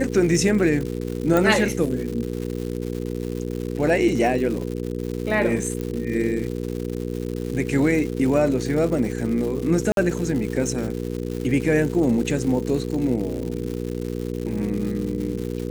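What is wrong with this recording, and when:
crackle 250 per s -29 dBFS
hum 60 Hz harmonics 8 -28 dBFS
1.37 s: pop
5.81 s: pop -16 dBFS
9.92–9.97 s: dropout 52 ms

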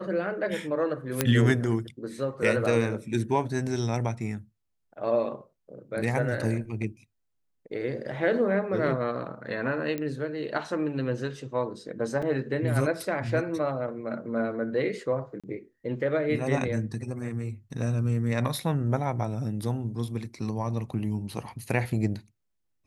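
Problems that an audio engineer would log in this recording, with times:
1.21 s: pop -6 dBFS
9.98 s: pop -19 dBFS
12.22–12.23 s: dropout 5.1 ms
15.40–15.44 s: dropout 36 ms

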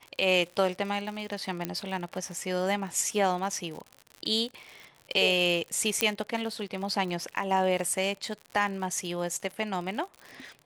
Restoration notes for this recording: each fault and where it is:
crackle 74 per s -35 dBFS
1.65 s: pop -15 dBFS
6.01 s: pop -7 dBFS

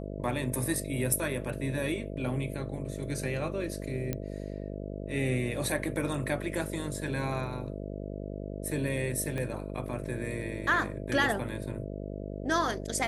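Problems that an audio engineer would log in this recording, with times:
buzz 50 Hz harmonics 13 -38 dBFS
4.13 s: pop -17 dBFS
9.38 s: pop -22 dBFS

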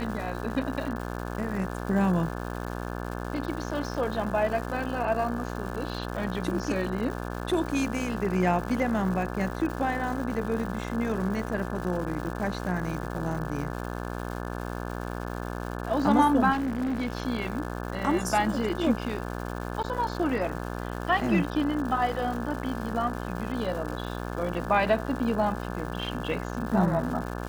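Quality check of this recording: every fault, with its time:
buzz 60 Hz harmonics 29 -34 dBFS
crackle 340 per s -36 dBFS
16.52–17.13 s: clipped -25 dBFS
19.83–19.84 s: dropout 9 ms

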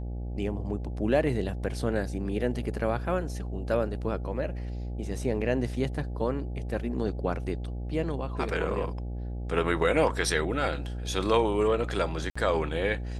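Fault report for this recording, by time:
buzz 60 Hz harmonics 14 -34 dBFS
12.30–12.36 s: dropout 55 ms

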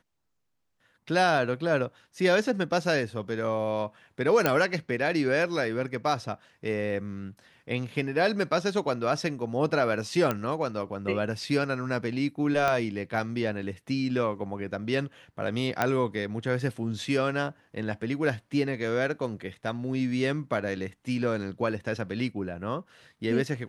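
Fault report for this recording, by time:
4.46 s: pop -8 dBFS
10.31 s: pop -13 dBFS
12.68 s: pop -13 dBFS
15.82 s: pop -10 dBFS

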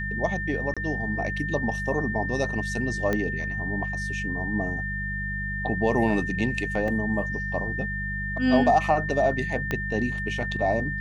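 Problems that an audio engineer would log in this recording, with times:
hum 50 Hz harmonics 4 -33 dBFS
whine 1.8 kHz -30 dBFS
0.74–0.77 s: dropout 26 ms
3.13 s: pop -13 dBFS
6.88 s: dropout 2.4 ms
9.71 s: pop -13 dBFS

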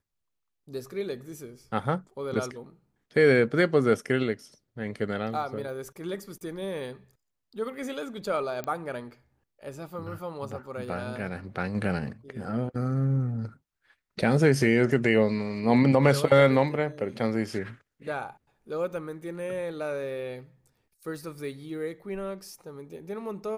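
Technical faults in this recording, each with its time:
8.64 s: pop -18 dBFS

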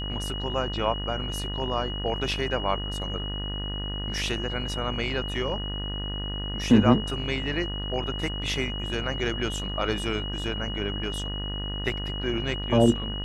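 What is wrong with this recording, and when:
buzz 50 Hz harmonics 40 -33 dBFS
whine 2.9 kHz -34 dBFS

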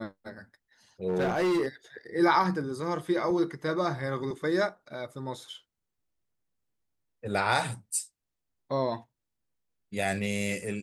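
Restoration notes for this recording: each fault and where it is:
1.07–1.67 s: clipped -23 dBFS

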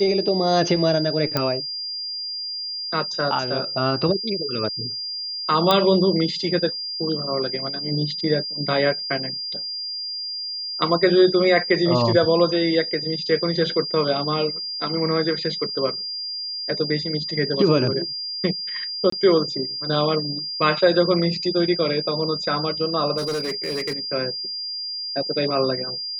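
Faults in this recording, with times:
whine 4.8 kHz -27 dBFS
1.37 s: pop -7 dBFS
5.71 s: pop -4 dBFS
19.10–19.12 s: dropout 24 ms
23.17–23.99 s: clipped -22 dBFS

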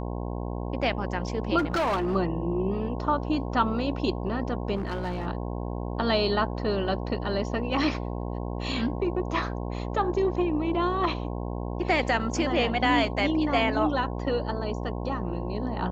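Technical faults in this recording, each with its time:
buzz 60 Hz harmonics 18 -32 dBFS
1.58–2.16 s: clipped -22.5 dBFS
4.75–5.27 s: clipped -26 dBFS

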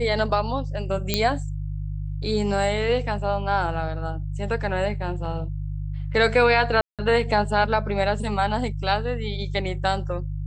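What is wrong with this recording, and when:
hum 50 Hz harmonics 3 -29 dBFS
1.14 s: pop -5 dBFS
5.25 s: dropout 4.4 ms
6.81–6.99 s: dropout 177 ms

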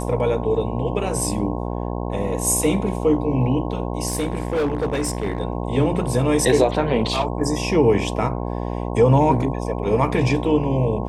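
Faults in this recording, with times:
buzz 60 Hz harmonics 18 -26 dBFS
4.07–5.38 s: clipped -17.5 dBFS

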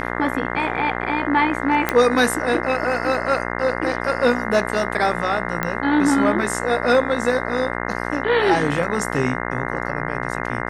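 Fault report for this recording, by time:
buzz 60 Hz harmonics 35 -26 dBFS
1.89 s: pop -4 dBFS
5.63 s: pop -8 dBFS

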